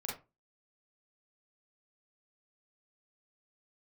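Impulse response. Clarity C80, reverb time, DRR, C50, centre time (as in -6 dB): 12.5 dB, 0.30 s, -4.0 dB, 4.5 dB, 38 ms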